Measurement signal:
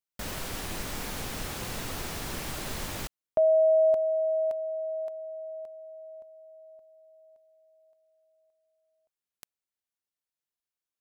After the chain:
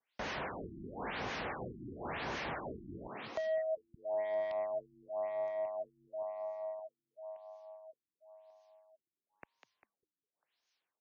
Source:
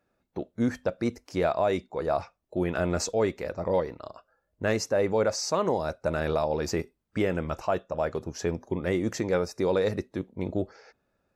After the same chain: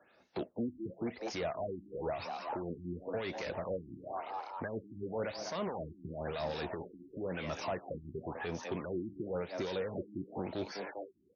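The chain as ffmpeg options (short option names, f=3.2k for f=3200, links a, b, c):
-filter_complex "[0:a]crystalizer=i=3.5:c=0,acrossover=split=3200[a][b];[b]acompressor=threshold=-32dB:ratio=4:attack=1:release=60[c];[a][c]amix=inputs=2:normalize=0,equalizer=f=1.3k:w=4.3:g=-4.5,asplit=6[d][e][f][g][h][i];[e]adelay=199,afreqshift=100,volume=-16dB[j];[f]adelay=398,afreqshift=200,volume=-21dB[k];[g]adelay=597,afreqshift=300,volume=-26.1dB[l];[h]adelay=796,afreqshift=400,volume=-31.1dB[m];[i]adelay=995,afreqshift=500,volume=-36.1dB[n];[d][j][k][l][m][n]amix=inputs=6:normalize=0,acrossover=split=230|2200[o][p][q];[o]acompressor=threshold=-39dB:ratio=4[r];[p]acompressor=threshold=-43dB:ratio=4[s];[q]acompressor=threshold=-48dB:ratio=4[t];[r][s][t]amix=inputs=3:normalize=0,asplit=2[u][v];[v]highpass=f=720:p=1,volume=24dB,asoftclip=type=tanh:threshold=-22.5dB[w];[u][w]amix=inputs=2:normalize=0,lowpass=f=2.4k:p=1,volume=-6dB,highpass=47,acrossover=split=1300[x][y];[x]aeval=exprs='val(0)*(1-0.5/2+0.5/2*cos(2*PI*4.8*n/s))':c=same[z];[y]aeval=exprs='val(0)*(1-0.5/2-0.5/2*cos(2*PI*4.8*n/s))':c=same[aa];[z][aa]amix=inputs=2:normalize=0,afftfilt=real='re*lt(b*sr/1024,350*pow(6900/350,0.5+0.5*sin(2*PI*0.96*pts/sr)))':imag='im*lt(b*sr/1024,350*pow(6900/350,0.5+0.5*sin(2*PI*0.96*pts/sr)))':win_size=1024:overlap=0.75,volume=-2.5dB"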